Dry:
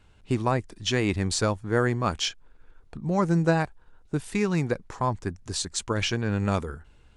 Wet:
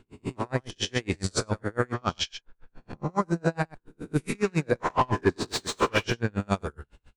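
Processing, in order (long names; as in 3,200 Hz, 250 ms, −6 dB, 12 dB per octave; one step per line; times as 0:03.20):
peak hold with a rise ahead of every peak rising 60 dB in 0.55 s
in parallel at −1.5 dB: brickwall limiter −16.5 dBFS, peak gain reduction 8.5 dB
0:04.80–0:06.04: on the sum: mid-hump overdrive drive 26 dB, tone 1,100 Hz, clips at −6.5 dBFS
on a send: single-tap delay 94 ms −10.5 dB
on the sum: automatic gain control gain up to 8 dB
0:01.94–0:03.10: high-frequency loss of the air 75 metres
tremolo with a sine in dB 7.2 Hz, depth 36 dB
level −6.5 dB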